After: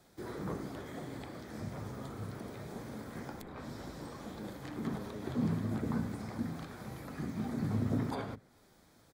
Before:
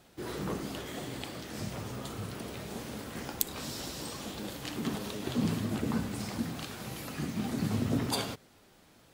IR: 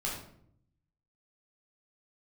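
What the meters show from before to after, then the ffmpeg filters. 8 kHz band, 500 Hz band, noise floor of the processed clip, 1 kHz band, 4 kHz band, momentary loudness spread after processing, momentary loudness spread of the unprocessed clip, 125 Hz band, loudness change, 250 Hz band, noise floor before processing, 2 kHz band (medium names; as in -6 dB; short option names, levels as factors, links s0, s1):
-15.0 dB, -3.5 dB, -64 dBFS, -3.5 dB, -14.5 dB, 12 LU, 9 LU, -1.5 dB, -4.0 dB, -3.0 dB, -61 dBFS, -6.5 dB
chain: -filter_complex "[0:a]equalizer=f=2800:w=5.3:g=-12,acrossover=split=270|2500[s0][s1][s2];[s0]asplit=2[s3][s4];[s4]adelay=37,volume=0.631[s5];[s3][s5]amix=inputs=2:normalize=0[s6];[s2]acompressor=threshold=0.00158:ratio=6[s7];[s6][s1][s7]amix=inputs=3:normalize=0,volume=0.668"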